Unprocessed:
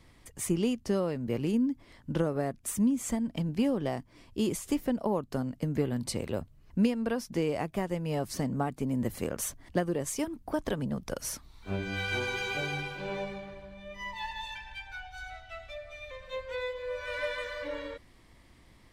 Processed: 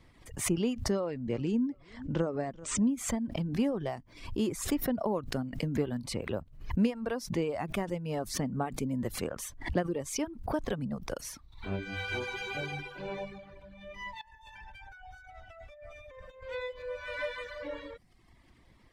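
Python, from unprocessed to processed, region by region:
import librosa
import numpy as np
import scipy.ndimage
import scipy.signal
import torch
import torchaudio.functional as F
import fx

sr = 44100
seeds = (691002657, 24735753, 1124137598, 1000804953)

y = fx.chain(x, sr, fx.steep_lowpass(hz=8500.0, slope=72),
    fx.echo_feedback(ms=386, feedback_pct=36, wet_db=-23.0), at=(0.91, 2.89))
y = fx.chain(y, sr, fx.peak_eq(hz=3200.0, db=-7.5, octaves=1.5),
    fx.over_compress(threshold_db=-48.0, ratio=-1.0),
    fx.notch(hz=4100.0, q=6.9), at=(14.21, 16.44))
y = fx.dereverb_blind(y, sr, rt60_s=0.79)
y = fx.high_shelf(y, sr, hz=5500.0, db=-7.5)
y = fx.pre_swell(y, sr, db_per_s=100.0)
y = y * 10.0 ** (-1.0 / 20.0)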